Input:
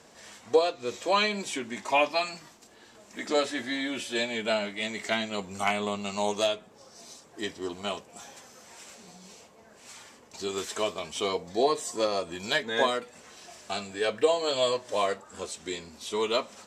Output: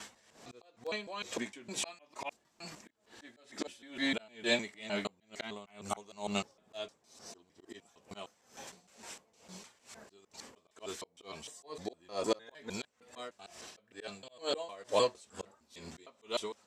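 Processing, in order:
slices reordered back to front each 153 ms, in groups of 3
in parallel at −6 dB: wrap-around overflow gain 11 dB
on the sum: volume swells 343 ms
tremolo with a sine in dB 2.2 Hz, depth 20 dB
level −2 dB

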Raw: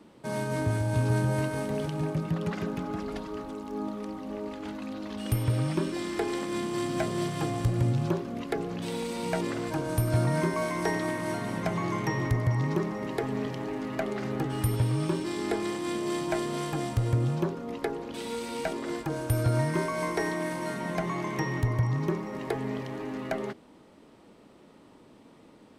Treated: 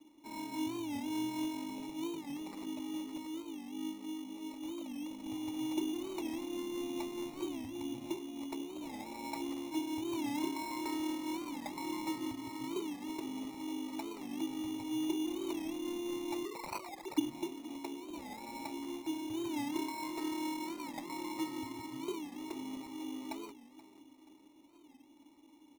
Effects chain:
0:16.45–0:17.19: three sine waves on the formant tracks
formant filter u
parametric band 2,900 Hz +13 dB 1.3 octaves
mains-hum notches 60/120/180/240/300/360/420 Hz
comb filter 3.1 ms, depth 63%
repeating echo 478 ms, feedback 52%, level −16.5 dB
decimation without filtering 14×
wow of a warped record 45 rpm, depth 160 cents
level −2.5 dB

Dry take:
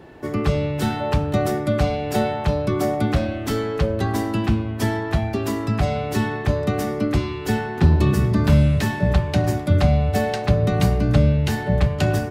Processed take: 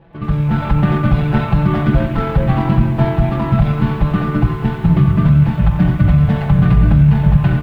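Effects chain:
running median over 25 samples
time stretch by overlap-add 0.62×, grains 45 ms
parametric band 370 Hz −14.5 dB 1.4 octaves
single-tap delay 236 ms −20.5 dB
automatic gain control gain up to 13.5 dB
high-frequency loss of the air 460 metres
comb filter 6 ms, depth 84%
hum removal 80.74 Hz, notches 29
brickwall limiter −8.5 dBFS, peak gain reduction 6.5 dB
feedback echo at a low word length 90 ms, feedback 80%, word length 8 bits, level −14.5 dB
level +5 dB

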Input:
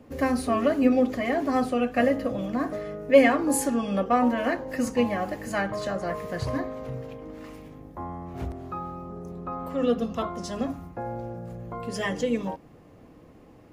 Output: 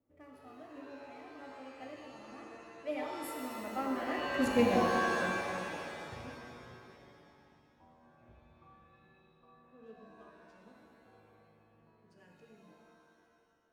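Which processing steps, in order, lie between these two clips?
adaptive Wiener filter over 9 samples
source passing by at 0:04.57, 29 m/s, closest 5.8 metres
reverb with rising layers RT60 2.1 s, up +7 semitones, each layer −2 dB, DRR 1.5 dB
level −4 dB

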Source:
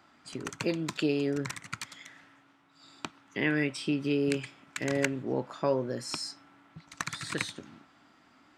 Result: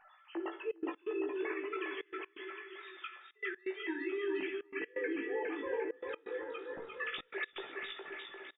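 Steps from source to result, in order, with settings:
three sine waves on the formant tracks
hard clipping −24.5 dBFS, distortion −14 dB
gate on every frequency bin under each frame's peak −25 dB strong
tuned comb filter 860 Hz, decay 0.17 s, harmonics all, mix 80%
reversed playback
downward compressor 5 to 1, threshold −54 dBFS, peak gain reduction 13 dB
reversed playback
double-tracking delay 18 ms −4 dB
on a send: bouncing-ball delay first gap 410 ms, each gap 0.85×, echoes 5
on the sum: rectangular room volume 360 cubic metres, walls mixed, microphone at 0.5 metres
gate pattern "xxxxxx.x.xx" 127 BPM −24 dB
level +15 dB

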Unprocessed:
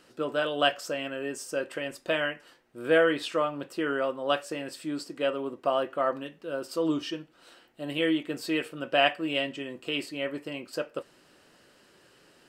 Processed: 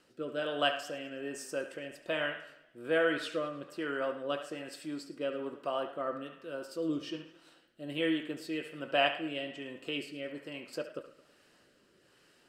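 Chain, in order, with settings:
feedback echo with a band-pass in the loop 71 ms, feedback 49%, band-pass 1,500 Hz, level −7.5 dB
rotating-speaker cabinet horn 1.2 Hz
feedback echo with a swinging delay time 107 ms, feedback 49%, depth 97 cents, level −17 dB
level −4.5 dB

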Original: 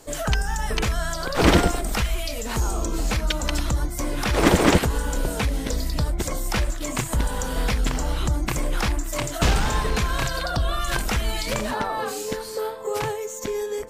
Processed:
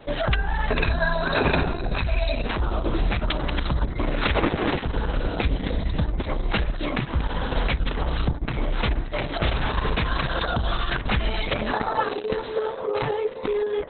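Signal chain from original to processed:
0:00.70–0:02.46: EQ curve with evenly spaced ripples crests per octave 1.5, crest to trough 17 dB
downward compressor 4 to 1, threshold −25 dBFS, peak gain reduction 14 dB
level +5.5 dB
Opus 6 kbit/s 48,000 Hz

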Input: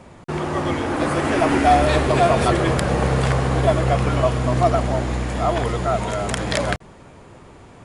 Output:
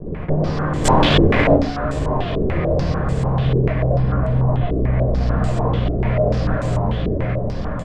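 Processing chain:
stylus tracing distortion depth 0.43 ms
repeating echo 570 ms, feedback 35%, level −11.5 dB
fuzz pedal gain 38 dB, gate −41 dBFS
0:03.93–0:04.99: high-frequency loss of the air 410 metres
downward compressor 16 to 1, threshold −20 dBFS, peak gain reduction 7.5 dB
spectral tilt −3 dB per octave
0:00.84–0:01.54: log-companded quantiser 2 bits
convolution reverb, pre-delay 7 ms, DRR −3 dB
low-pass on a step sequencer 6.8 Hz 390–7,900 Hz
level −14.5 dB

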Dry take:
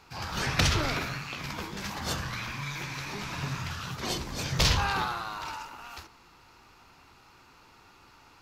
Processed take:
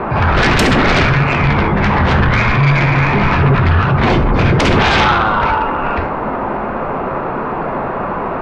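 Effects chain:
gate on every frequency bin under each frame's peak −20 dB strong
Chebyshev low-pass filter 2,200 Hz, order 3
low-shelf EQ 80 Hz +11.5 dB
in parallel at 0 dB: brickwall limiter −22 dBFS, peak gain reduction 10.5 dB
on the sum: noise in a band 140–1,200 Hz −39 dBFS
sine wavefolder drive 15 dB, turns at −8.5 dBFS
reverb whose tail is shaped and stops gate 170 ms falling, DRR 9 dB

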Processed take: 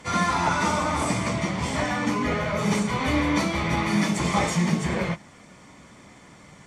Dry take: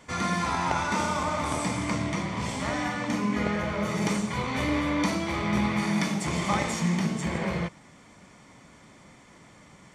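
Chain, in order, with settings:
harmonic generator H 2 −33 dB, 3 −34 dB, 4 −33 dB, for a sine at −11.5 dBFS
time stretch by phase vocoder 0.67×
level +7.5 dB

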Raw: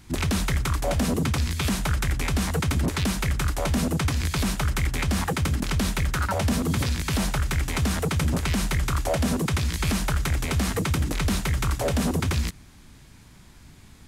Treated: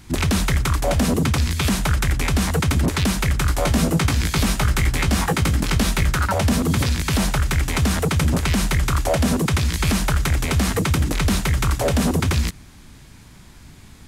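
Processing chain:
0:03.47–0:06.14: double-tracking delay 18 ms −6 dB
level +5 dB

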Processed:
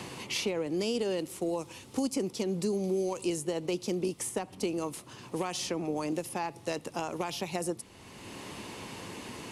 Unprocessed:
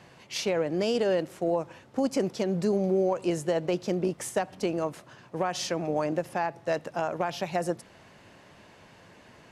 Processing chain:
graphic EQ with 15 bands 160 Hz −6 dB, 630 Hz −11 dB, 1,600 Hz −11 dB, 10,000 Hz +9 dB
multiband upward and downward compressor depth 70%

